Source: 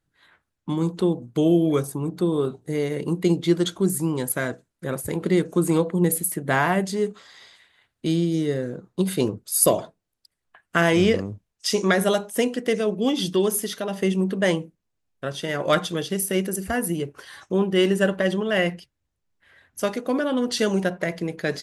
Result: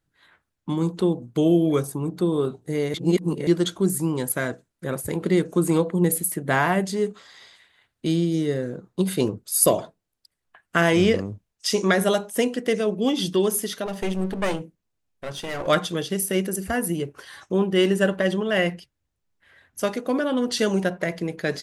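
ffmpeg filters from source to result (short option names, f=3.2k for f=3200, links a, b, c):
-filter_complex "[0:a]asettb=1/sr,asplit=3[a][b][c];[a]atrim=end=13.864[d];[b]atrim=start=13.86:end=15.67,asetpts=PTS-STARTPTS,afade=t=in:d=0.004:c=qsin,afade=t=out:st=1.806:d=0.004:c=qsin,aeval=exprs='clip(val(0),-1,0.0251)':c=same[e];[c]atrim=start=15.666[f];[d][e]acrossfade=d=0.004:c1=hsin:c2=qsin[g];[g][f]acrossfade=d=0.004:c1=qsin:c2=hsin,asplit=3[h][i][j];[h]atrim=end=2.942[k];[i]atrim=start=2.938:end=3.472,asetpts=PTS-STARTPTS,areverse[l];[j]atrim=start=3.468[m];[k][l]acrossfade=d=0.004:c1=hsin:c2=hsin[n];[n][m]acrossfade=d=0.004:c1=hsin:c2=hsin"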